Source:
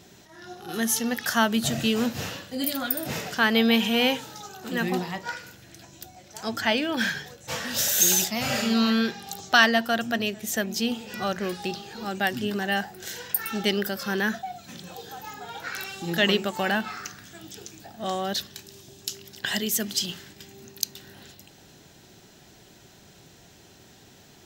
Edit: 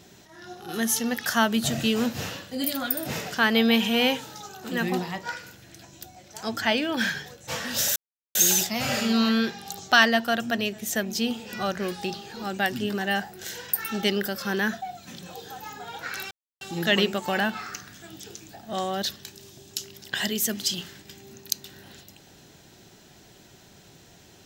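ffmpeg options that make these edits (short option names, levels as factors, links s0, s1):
-filter_complex "[0:a]asplit=3[s0][s1][s2];[s0]atrim=end=7.96,asetpts=PTS-STARTPTS,afade=t=out:st=7.956:d=0.004:c=hsin,apad=pad_dur=0.39[s3];[s1]atrim=start=7.96:end=15.92,asetpts=PTS-STARTPTS,afade=t=in:d=0.004:c=hsin,afade=t=out:st=7.956:d=0.004:c=hsin,apad=pad_dur=0.3[s4];[s2]atrim=start=15.92,asetpts=PTS-STARTPTS,afade=t=in:d=0.004:c=hsin[s5];[s3][s4][s5]concat=n=3:v=0:a=1"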